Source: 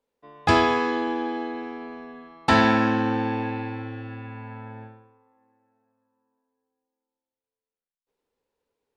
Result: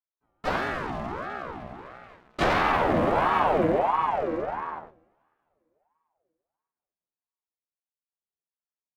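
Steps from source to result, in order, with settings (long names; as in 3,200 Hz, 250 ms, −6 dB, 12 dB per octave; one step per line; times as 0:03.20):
source passing by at 0:03.71, 11 m/s, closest 4.3 metres
low-shelf EQ 140 Hz +11 dB
hum removal 143.9 Hz, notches 33
leveller curve on the samples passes 3
pitch shifter −5.5 semitones
coupled-rooms reverb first 0.72 s, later 3.5 s, from −20 dB, DRR 16 dB
pitch-shifted copies added +4 semitones −5 dB
ring modulator whose carrier an LFO sweeps 720 Hz, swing 45%, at 1.5 Hz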